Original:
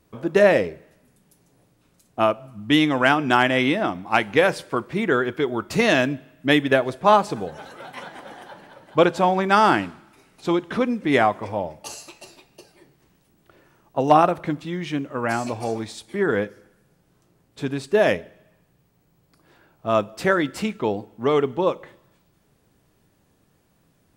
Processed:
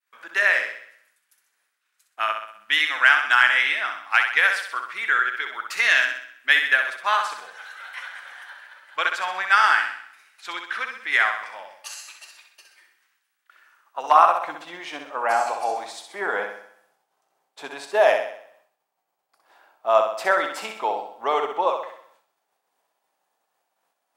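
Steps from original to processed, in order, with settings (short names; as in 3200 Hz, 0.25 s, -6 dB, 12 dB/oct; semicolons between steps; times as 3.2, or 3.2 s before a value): flutter echo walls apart 11 m, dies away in 0.62 s; expander -54 dBFS; high-pass sweep 1600 Hz -> 780 Hz, 13.52–14.75; gain -1.5 dB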